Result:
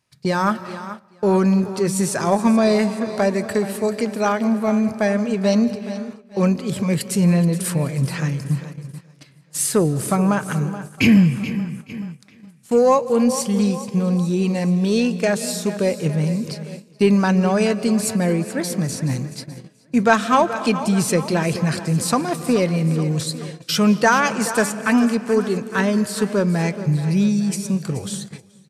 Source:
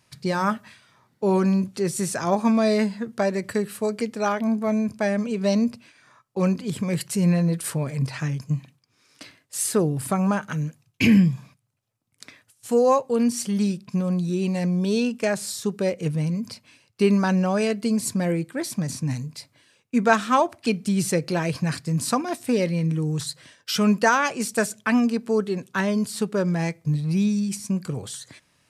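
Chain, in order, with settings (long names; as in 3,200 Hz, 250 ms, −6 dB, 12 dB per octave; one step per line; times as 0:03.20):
repeating echo 428 ms, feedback 55%, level −14 dB
comb and all-pass reverb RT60 2.3 s, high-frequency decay 0.55×, pre-delay 120 ms, DRR 15 dB
in parallel at −6.5 dB: soft clipping −15 dBFS, distortion −16 dB
on the sum: noise gate −33 dBFS, range −13 dB
level +1 dB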